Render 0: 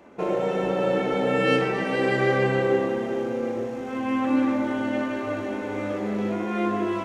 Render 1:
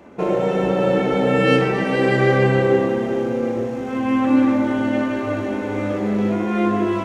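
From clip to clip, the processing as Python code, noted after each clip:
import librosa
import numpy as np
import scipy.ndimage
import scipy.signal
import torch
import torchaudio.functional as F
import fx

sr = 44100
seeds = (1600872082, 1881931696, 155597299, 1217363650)

y = fx.peak_eq(x, sr, hz=87.0, db=6.0, octaves=2.9)
y = y * 10.0 ** (4.0 / 20.0)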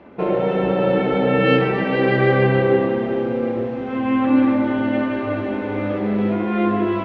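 y = scipy.signal.sosfilt(scipy.signal.butter(4, 3900.0, 'lowpass', fs=sr, output='sos'), x)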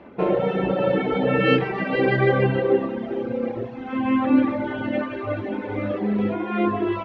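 y = fx.dereverb_blind(x, sr, rt60_s=1.8)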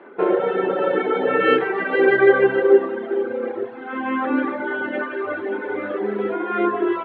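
y = fx.cabinet(x, sr, low_hz=390.0, low_slope=12, high_hz=3500.0, hz=(390.0, 610.0, 1500.0, 2600.0), db=(9, -4, 8, -6))
y = y * 10.0 ** (2.0 / 20.0)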